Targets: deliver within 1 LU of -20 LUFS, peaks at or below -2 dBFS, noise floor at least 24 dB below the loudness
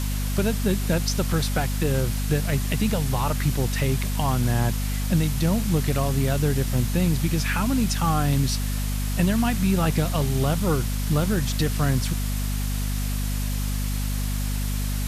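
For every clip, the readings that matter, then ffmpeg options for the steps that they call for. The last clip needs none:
hum 50 Hz; highest harmonic 250 Hz; hum level -23 dBFS; noise floor -26 dBFS; noise floor target -49 dBFS; loudness -24.5 LUFS; peak level -10.0 dBFS; loudness target -20.0 LUFS
-> -af "bandreject=f=50:t=h:w=6,bandreject=f=100:t=h:w=6,bandreject=f=150:t=h:w=6,bandreject=f=200:t=h:w=6,bandreject=f=250:t=h:w=6"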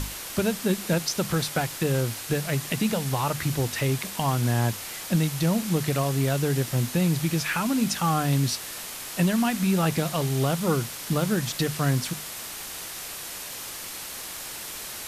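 hum not found; noise floor -37 dBFS; noise floor target -51 dBFS
-> -af "afftdn=nr=14:nf=-37"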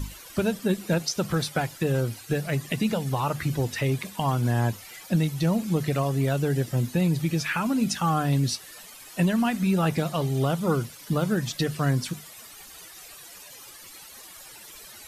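noise floor -46 dBFS; noise floor target -50 dBFS
-> -af "afftdn=nr=6:nf=-46"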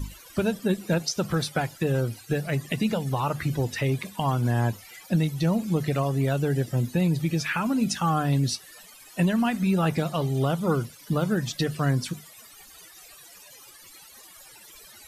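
noise floor -49 dBFS; noise floor target -50 dBFS
-> -af "afftdn=nr=6:nf=-49"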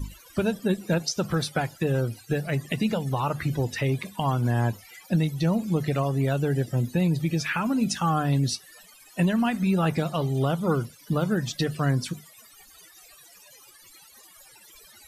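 noise floor -52 dBFS; loudness -26.0 LUFS; peak level -12.5 dBFS; loudness target -20.0 LUFS
-> -af "volume=2"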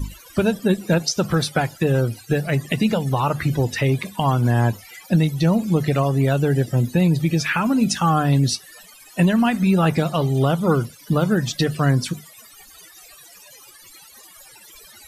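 loudness -20.0 LUFS; peak level -6.5 dBFS; noise floor -46 dBFS

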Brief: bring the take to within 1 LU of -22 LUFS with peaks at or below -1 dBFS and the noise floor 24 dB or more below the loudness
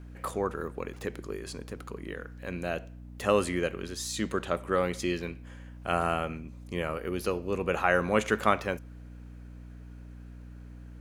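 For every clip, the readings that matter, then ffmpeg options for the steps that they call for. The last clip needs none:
hum 60 Hz; highest harmonic 300 Hz; hum level -43 dBFS; loudness -31.0 LUFS; peak level -7.5 dBFS; loudness target -22.0 LUFS
-> -af "bandreject=f=60:t=h:w=6,bandreject=f=120:t=h:w=6,bandreject=f=180:t=h:w=6,bandreject=f=240:t=h:w=6,bandreject=f=300:t=h:w=6"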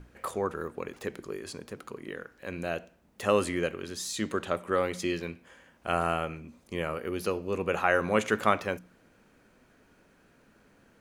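hum not found; loudness -31.5 LUFS; peak level -7.5 dBFS; loudness target -22.0 LUFS
-> -af "volume=2.99,alimiter=limit=0.891:level=0:latency=1"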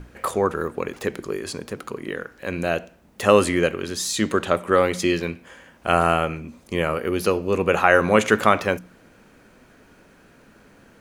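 loudness -22.0 LUFS; peak level -1.0 dBFS; noise floor -53 dBFS

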